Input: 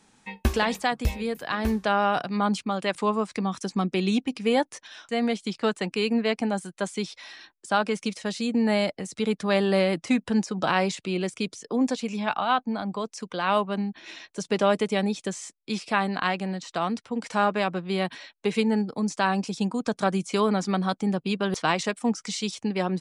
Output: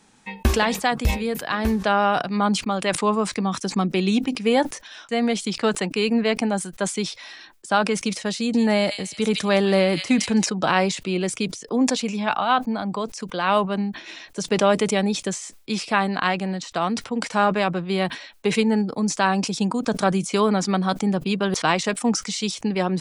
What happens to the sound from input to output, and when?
0:08.37–0:10.46: delay with a high-pass on its return 164 ms, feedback 37%, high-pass 3,300 Hz, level −5 dB
whole clip: level that may fall only so fast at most 120 dB per second; level +3.5 dB

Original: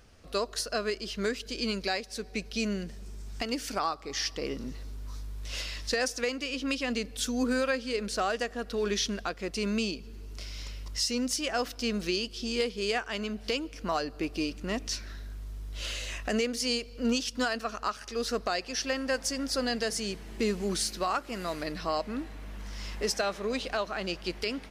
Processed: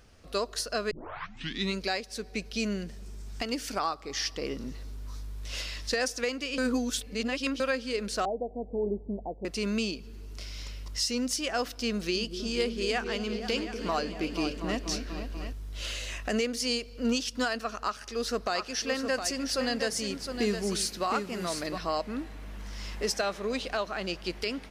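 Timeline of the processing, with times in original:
0:00.91: tape start 0.87 s
0:06.58–0:07.60: reverse
0:08.25–0:09.45: Butterworth low-pass 900 Hz 96 dB per octave
0:11.91–0:15.53: echo whose low-pass opens from repeat to repeat 242 ms, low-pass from 400 Hz, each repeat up 2 octaves, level −6 dB
0:17.75–0:21.78: single-tap delay 712 ms −7 dB

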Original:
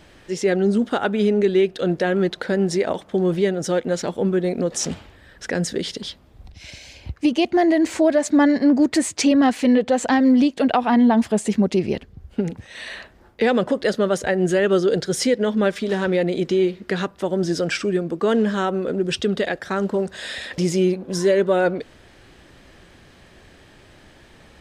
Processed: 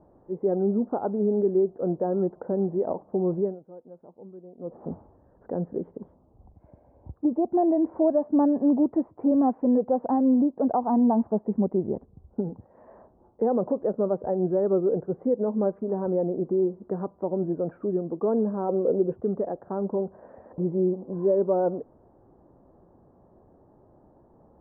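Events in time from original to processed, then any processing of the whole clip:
0:03.41–0:04.78: duck −19 dB, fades 0.19 s
0:18.69–0:19.14: parametric band 480 Hz +9 dB 0.68 octaves
whole clip: Butterworth low-pass 990 Hz 36 dB per octave; low-shelf EQ 85 Hz −10.5 dB; level −4.5 dB

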